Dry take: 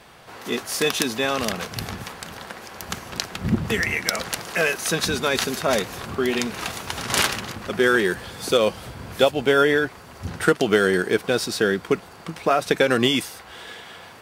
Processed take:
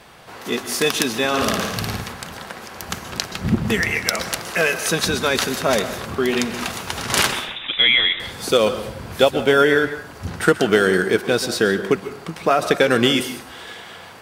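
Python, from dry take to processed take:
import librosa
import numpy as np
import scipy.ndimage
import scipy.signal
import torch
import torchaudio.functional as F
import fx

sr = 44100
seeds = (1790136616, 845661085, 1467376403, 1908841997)

y = fx.room_flutter(x, sr, wall_m=9.5, rt60_s=0.89, at=(1.28, 2.01))
y = fx.freq_invert(y, sr, carrier_hz=3700, at=(7.31, 8.2))
y = fx.rev_plate(y, sr, seeds[0], rt60_s=0.58, hf_ratio=0.6, predelay_ms=115, drr_db=11.0)
y = y * librosa.db_to_amplitude(2.5)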